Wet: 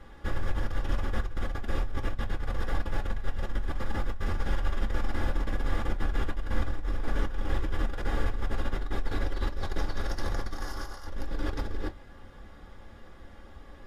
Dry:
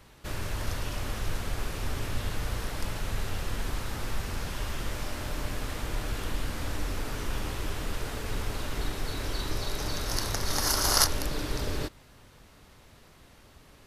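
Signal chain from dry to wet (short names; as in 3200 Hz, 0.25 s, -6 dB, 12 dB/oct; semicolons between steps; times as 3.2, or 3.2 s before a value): LPF 1700 Hz 6 dB/oct; bell 820 Hz +4.5 dB 1.2 oct; negative-ratio compressor -33 dBFS, ratio -0.5; reverb RT60 0.15 s, pre-delay 3 ms, DRR 3 dB; gain -3 dB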